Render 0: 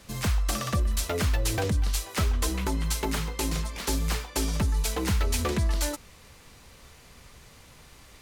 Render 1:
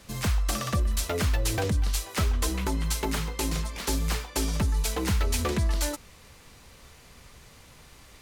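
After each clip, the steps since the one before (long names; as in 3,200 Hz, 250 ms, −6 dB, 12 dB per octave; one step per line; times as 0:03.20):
no processing that can be heard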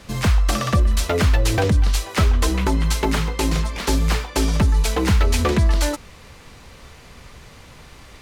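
high-shelf EQ 6,500 Hz −10 dB
level +9 dB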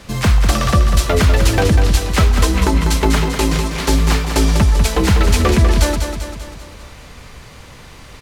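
repeating echo 196 ms, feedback 54%, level −7 dB
level +4 dB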